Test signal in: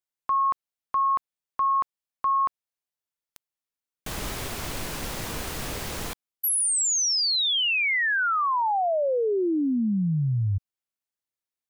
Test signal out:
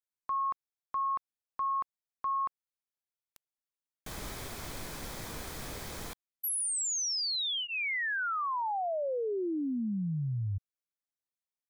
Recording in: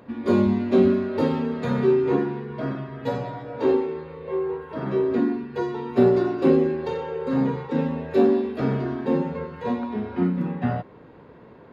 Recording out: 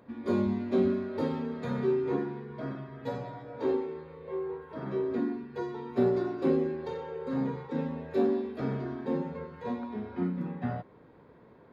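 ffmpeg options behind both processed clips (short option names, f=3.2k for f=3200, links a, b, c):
-af "bandreject=f=2.8k:w=9.1,volume=-8.5dB"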